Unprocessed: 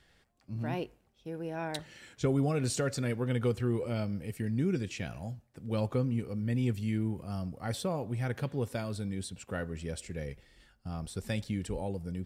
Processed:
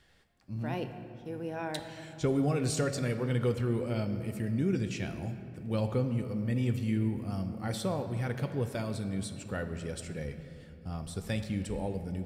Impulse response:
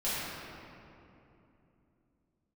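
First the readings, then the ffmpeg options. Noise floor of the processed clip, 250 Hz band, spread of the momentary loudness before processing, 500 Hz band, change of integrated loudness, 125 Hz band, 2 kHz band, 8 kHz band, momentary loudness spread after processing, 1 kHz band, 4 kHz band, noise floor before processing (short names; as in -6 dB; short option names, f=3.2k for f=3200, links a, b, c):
-50 dBFS, +1.0 dB, 11 LU, +1.0 dB, +1.0 dB, +1.0 dB, +0.5 dB, 0.0 dB, 10 LU, +0.5 dB, +0.5 dB, -69 dBFS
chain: -filter_complex "[0:a]asplit=2[a][b];[1:a]atrim=start_sample=2205,adelay=10[c];[b][c]afir=irnorm=-1:irlink=0,volume=-16.5dB[d];[a][d]amix=inputs=2:normalize=0"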